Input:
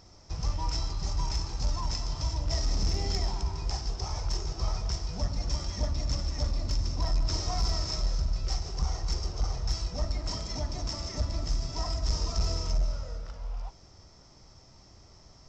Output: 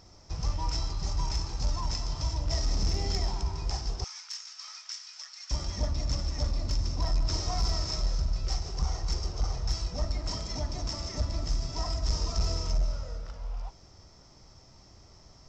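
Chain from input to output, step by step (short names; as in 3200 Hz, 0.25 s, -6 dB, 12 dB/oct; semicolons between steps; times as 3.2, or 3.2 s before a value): 4.04–5.51 HPF 1500 Hz 24 dB/oct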